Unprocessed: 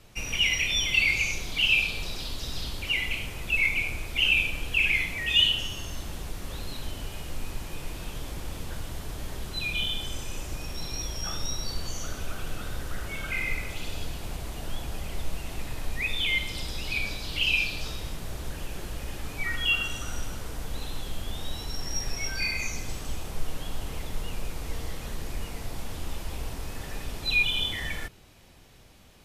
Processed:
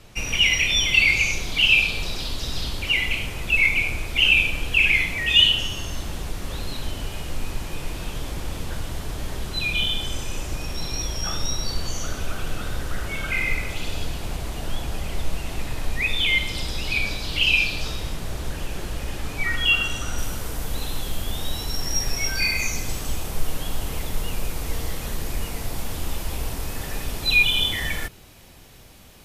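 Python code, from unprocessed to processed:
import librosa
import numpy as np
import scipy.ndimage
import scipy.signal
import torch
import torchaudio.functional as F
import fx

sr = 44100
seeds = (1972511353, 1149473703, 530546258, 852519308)

y = fx.high_shelf(x, sr, hz=11000.0, db=fx.steps((0.0, -4.5), (20.17, 9.5)))
y = y * librosa.db_to_amplitude(6.0)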